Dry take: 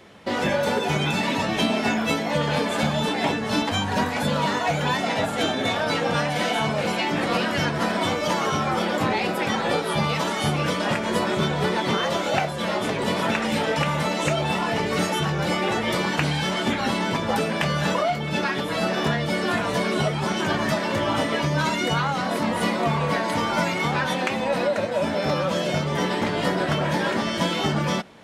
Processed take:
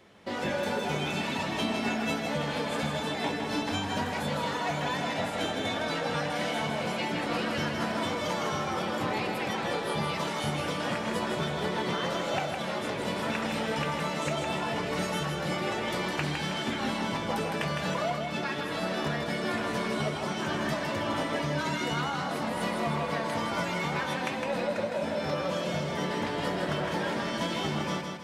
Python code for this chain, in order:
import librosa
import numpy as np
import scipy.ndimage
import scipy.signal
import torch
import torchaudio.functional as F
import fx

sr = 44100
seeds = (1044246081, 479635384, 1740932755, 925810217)

y = fx.echo_feedback(x, sr, ms=159, feedback_pct=44, wet_db=-5.0)
y = y * librosa.db_to_amplitude(-8.5)